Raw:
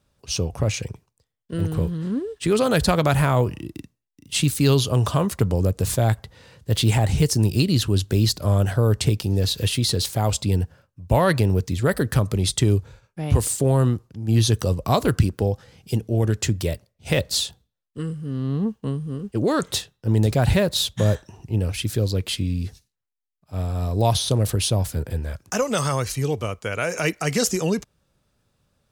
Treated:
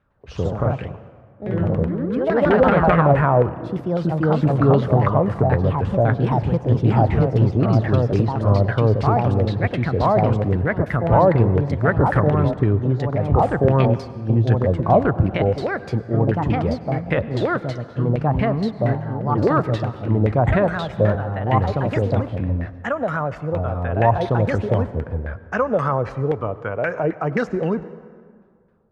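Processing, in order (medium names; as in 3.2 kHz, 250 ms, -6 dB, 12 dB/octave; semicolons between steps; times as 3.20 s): LFO low-pass saw down 3.8 Hz 530–1900 Hz; ever faster or slower copies 105 ms, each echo +2 st, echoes 2; reverberation RT60 2.0 s, pre-delay 89 ms, DRR 15.5 dB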